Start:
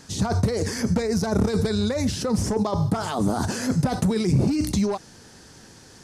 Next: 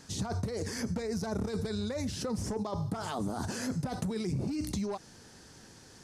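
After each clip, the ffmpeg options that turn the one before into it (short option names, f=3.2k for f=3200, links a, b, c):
-af "acompressor=threshold=-26dB:ratio=3,volume=-6dB"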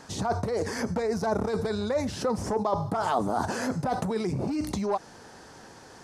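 -af "equalizer=f=830:w=0.52:g=12.5"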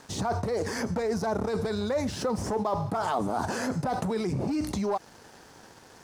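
-filter_complex "[0:a]asplit=2[a][b];[b]alimiter=limit=-24dB:level=0:latency=1:release=25,volume=2dB[c];[a][c]amix=inputs=2:normalize=0,aeval=exprs='sgn(val(0))*max(abs(val(0))-0.00501,0)':c=same,volume=-5.5dB"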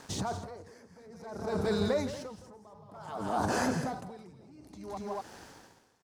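-af "aecho=1:1:166.2|236.2:0.447|0.447,aeval=exprs='val(0)*pow(10,-27*(0.5-0.5*cos(2*PI*0.56*n/s))/20)':c=same"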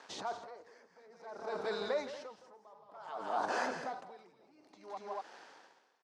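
-af "highpass=510,lowpass=4.3k,volume=-2dB"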